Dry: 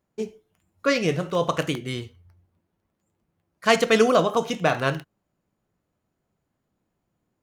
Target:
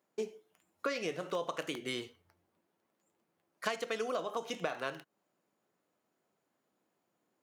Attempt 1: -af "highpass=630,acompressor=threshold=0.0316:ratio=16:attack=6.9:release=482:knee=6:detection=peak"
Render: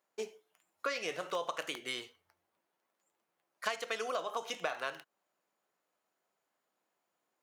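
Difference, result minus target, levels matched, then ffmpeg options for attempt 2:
250 Hz band -7.5 dB
-af "highpass=310,acompressor=threshold=0.0316:ratio=16:attack=6.9:release=482:knee=6:detection=peak"

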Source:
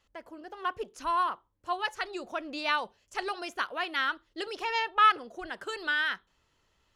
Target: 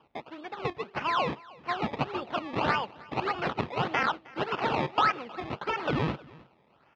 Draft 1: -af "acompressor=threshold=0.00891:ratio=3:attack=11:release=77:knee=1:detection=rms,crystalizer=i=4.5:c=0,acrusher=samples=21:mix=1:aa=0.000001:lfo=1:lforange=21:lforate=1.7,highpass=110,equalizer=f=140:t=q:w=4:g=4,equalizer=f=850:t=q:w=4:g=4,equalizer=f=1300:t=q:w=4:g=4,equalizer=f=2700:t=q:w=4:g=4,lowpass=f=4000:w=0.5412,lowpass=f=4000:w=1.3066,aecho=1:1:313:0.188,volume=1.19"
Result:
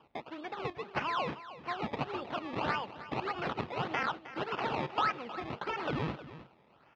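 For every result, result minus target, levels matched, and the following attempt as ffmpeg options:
compression: peak gain reduction +6 dB; echo-to-direct +8 dB
-af "acompressor=threshold=0.0251:ratio=3:attack=11:release=77:knee=1:detection=rms,crystalizer=i=4.5:c=0,acrusher=samples=21:mix=1:aa=0.000001:lfo=1:lforange=21:lforate=1.7,highpass=110,equalizer=f=140:t=q:w=4:g=4,equalizer=f=850:t=q:w=4:g=4,equalizer=f=1300:t=q:w=4:g=4,equalizer=f=2700:t=q:w=4:g=4,lowpass=f=4000:w=0.5412,lowpass=f=4000:w=1.3066,aecho=1:1:313:0.188,volume=1.19"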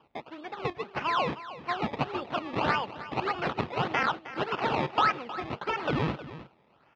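echo-to-direct +8 dB
-af "acompressor=threshold=0.0251:ratio=3:attack=11:release=77:knee=1:detection=rms,crystalizer=i=4.5:c=0,acrusher=samples=21:mix=1:aa=0.000001:lfo=1:lforange=21:lforate=1.7,highpass=110,equalizer=f=140:t=q:w=4:g=4,equalizer=f=850:t=q:w=4:g=4,equalizer=f=1300:t=q:w=4:g=4,equalizer=f=2700:t=q:w=4:g=4,lowpass=f=4000:w=0.5412,lowpass=f=4000:w=1.3066,aecho=1:1:313:0.075,volume=1.19"

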